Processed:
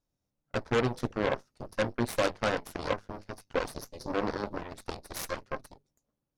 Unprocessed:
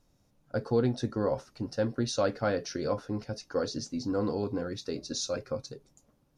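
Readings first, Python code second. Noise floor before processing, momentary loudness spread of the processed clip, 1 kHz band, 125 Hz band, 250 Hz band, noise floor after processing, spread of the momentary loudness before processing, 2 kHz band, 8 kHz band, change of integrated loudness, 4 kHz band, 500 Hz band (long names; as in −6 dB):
−69 dBFS, 13 LU, +3.5 dB, −3.0 dB, −3.5 dB, −85 dBFS, 9 LU, +6.5 dB, −4.5 dB, −1.0 dB, −1.5 dB, −1.5 dB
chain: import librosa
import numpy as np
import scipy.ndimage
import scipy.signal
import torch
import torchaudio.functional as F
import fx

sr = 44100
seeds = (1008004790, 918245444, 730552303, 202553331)

y = fx.hum_notches(x, sr, base_hz=50, count=5)
y = fx.cheby_harmonics(y, sr, harmonics=(5, 6, 7, 8), levels_db=(-12, -17, -9, -11), full_scale_db=-15.5)
y = y * 10.0 ** (-2.5 / 20.0)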